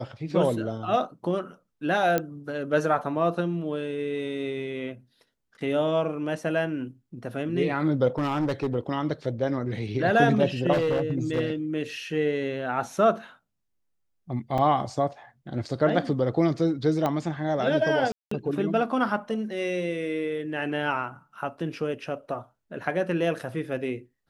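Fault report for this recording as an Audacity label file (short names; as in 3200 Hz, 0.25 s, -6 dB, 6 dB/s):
2.180000	2.180000	pop -11 dBFS
8.180000	8.750000	clipped -21.5 dBFS
10.720000	11.410000	clipped -20 dBFS
14.580000	14.580000	gap 3.6 ms
17.060000	17.060000	pop -14 dBFS
18.120000	18.310000	gap 0.194 s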